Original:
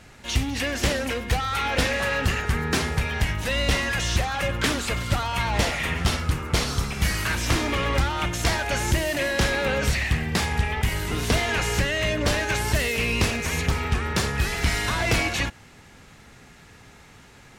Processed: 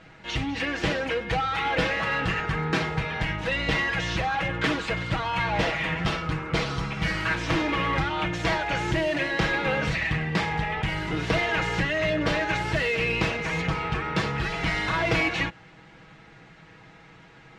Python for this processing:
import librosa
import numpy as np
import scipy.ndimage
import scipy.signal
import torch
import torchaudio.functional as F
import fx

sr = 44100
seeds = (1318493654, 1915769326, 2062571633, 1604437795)

p1 = scipy.signal.sosfilt(scipy.signal.butter(2, 3200.0, 'lowpass', fs=sr, output='sos'), x)
p2 = fx.low_shelf(p1, sr, hz=64.0, db=-9.0)
p3 = p2 + 0.71 * np.pad(p2, (int(6.2 * sr / 1000.0), 0))[:len(p2)]
p4 = np.clip(10.0 ** (20.5 / 20.0) * p3, -1.0, 1.0) / 10.0 ** (20.5 / 20.0)
p5 = p3 + (p4 * 10.0 ** (-7.5 / 20.0))
y = p5 * 10.0 ** (-4.0 / 20.0)